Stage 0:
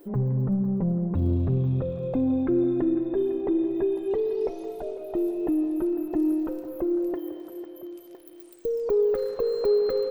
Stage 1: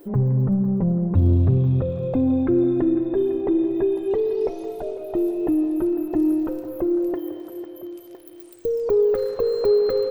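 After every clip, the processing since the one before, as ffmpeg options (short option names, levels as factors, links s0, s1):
-af "equalizer=f=100:w=5.9:g=13,volume=1.58"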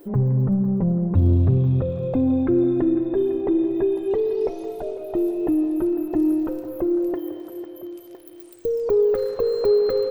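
-af anull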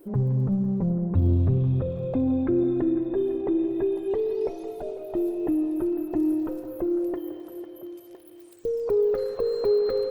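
-af "volume=0.631" -ar 48000 -c:a libopus -b:a 24k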